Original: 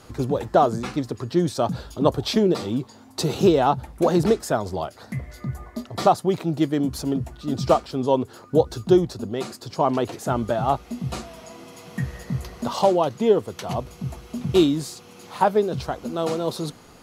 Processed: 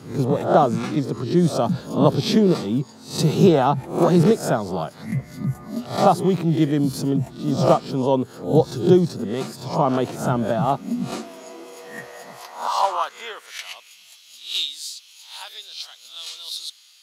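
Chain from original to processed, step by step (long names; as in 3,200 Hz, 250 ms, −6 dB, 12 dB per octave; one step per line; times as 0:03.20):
peak hold with a rise ahead of every peak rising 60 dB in 0.42 s
high-pass filter sweep 150 Hz → 3,500 Hz, 0:10.55–0:14.18
level −1 dB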